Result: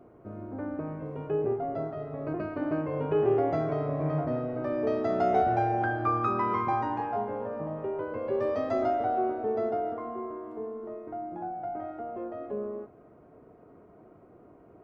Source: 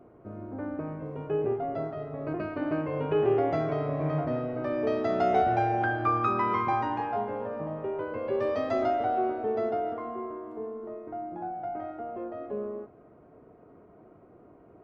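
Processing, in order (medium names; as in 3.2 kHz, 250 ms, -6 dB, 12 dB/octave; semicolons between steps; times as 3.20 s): dynamic bell 3.1 kHz, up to -6 dB, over -49 dBFS, Q 0.8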